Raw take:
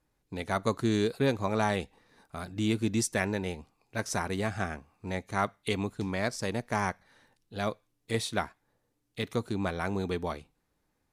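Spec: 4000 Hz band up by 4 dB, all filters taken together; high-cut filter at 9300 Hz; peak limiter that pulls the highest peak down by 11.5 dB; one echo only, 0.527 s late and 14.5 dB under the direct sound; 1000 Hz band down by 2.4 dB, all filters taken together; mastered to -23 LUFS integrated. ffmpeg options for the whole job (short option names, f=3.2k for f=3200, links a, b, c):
-af "lowpass=9.3k,equalizer=f=1k:t=o:g=-3.5,equalizer=f=4k:t=o:g=5,alimiter=limit=-24dB:level=0:latency=1,aecho=1:1:527:0.188,volume=13.5dB"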